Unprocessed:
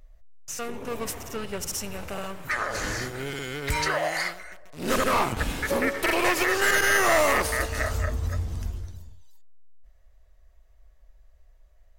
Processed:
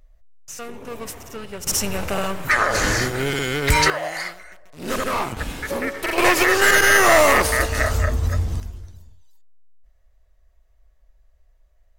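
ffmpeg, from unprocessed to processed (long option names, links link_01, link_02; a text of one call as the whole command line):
ffmpeg -i in.wav -af "asetnsamples=nb_out_samples=441:pad=0,asendcmd='1.67 volume volume 10dB;3.9 volume volume -0.5dB;6.18 volume volume 7dB;8.6 volume volume -2dB',volume=-1dB" out.wav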